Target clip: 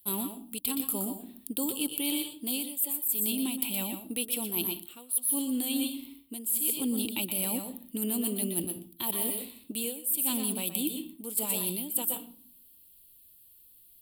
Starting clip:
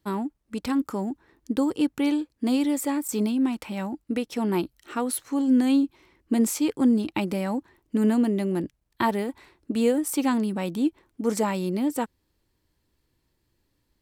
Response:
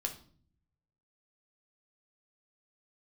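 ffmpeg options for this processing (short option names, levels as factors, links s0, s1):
-filter_complex "[0:a]highshelf=f=2300:t=q:w=3:g=9.5,asplit=2[s0][s1];[1:a]atrim=start_sample=2205,adelay=121[s2];[s1][s2]afir=irnorm=-1:irlink=0,volume=0.398[s3];[s0][s3]amix=inputs=2:normalize=0,aexciter=amount=13.9:drive=6.3:freq=9200,areverse,acompressor=threshold=0.1:ratio=16,areverse,equalizer=f=5800:t=o:w=0.22:g=-11,volume=0.501"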